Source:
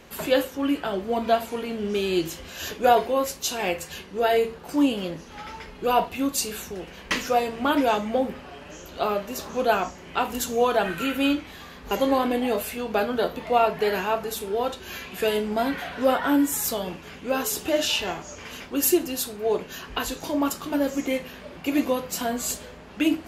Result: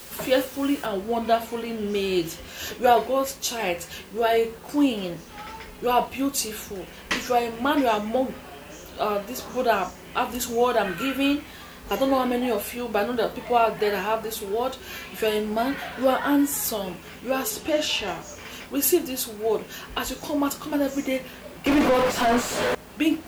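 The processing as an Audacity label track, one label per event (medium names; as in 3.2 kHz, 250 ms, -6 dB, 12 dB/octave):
0.860000	0.860000	noise floor step -43 dB -54 dB
17.500000	18.080000	treble shelf 9.6 kHz -10 dB
21.660000	22.750000	overdrive pedal drive 39 dB, tone 1.2 kHz, clips at -11.5 dBFS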